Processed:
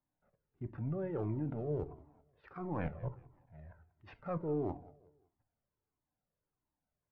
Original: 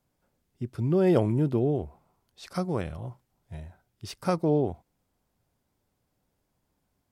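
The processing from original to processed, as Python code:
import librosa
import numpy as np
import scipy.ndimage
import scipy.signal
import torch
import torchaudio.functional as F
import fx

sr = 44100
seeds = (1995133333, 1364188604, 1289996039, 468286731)

p1 = scipy.signal.sosfilt(scipy.signal.butter(4, 2000.0, 'lowpass', fs=sr, output='sos'), x)
p2 = fx.low_shelf(p1, sr, hz=85.0, db=-7.5)
p3 = fx.level_steps(p2, sr, step_db=19)
p4 = fx.transient(p3, sr, attack_db=-6, sustain_db=1)
p5 = fx.rider(p4, sr, range_db=10, speed_s=0.5)
p6 = p5 + fx.echo_feedback(p5, sr, ms=187, feedback_pct=35, wet_db=-20.0, dry=0)
p7 = fx.room_shoebox(p6, sr, seeds[0], volume_m3=210.0, walls='furnished', distance_m=0.42)
p8 = fx.comb_cascade(p7, sr, direction='falling', hz=1.5)
y = p8 * librosa.db_to_amplitude(8.5)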